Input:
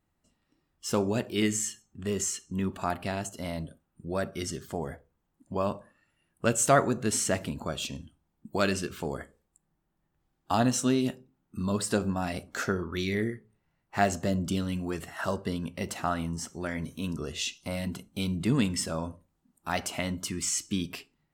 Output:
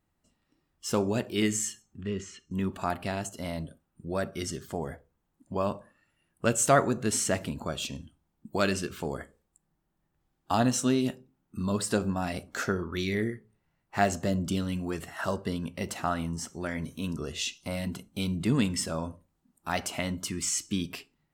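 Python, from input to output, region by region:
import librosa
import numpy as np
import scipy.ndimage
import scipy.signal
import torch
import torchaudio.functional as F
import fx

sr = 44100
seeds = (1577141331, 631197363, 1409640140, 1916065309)

y = fx.chain(x, sr, fx.lowpass(hz=2900.0, slope=12),
    fx.peak_eq(hz=770.0, db=-13.0, octaves=1.1), at=(2.01, 2.51))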